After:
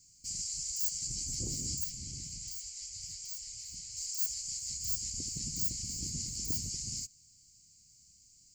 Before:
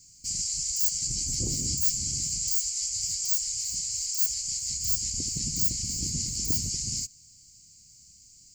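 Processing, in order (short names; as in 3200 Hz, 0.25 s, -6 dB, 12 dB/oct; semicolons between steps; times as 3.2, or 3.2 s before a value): 1.84–3.97 high shelf 5500 Hz -10.5 dB; gain -7.5 dB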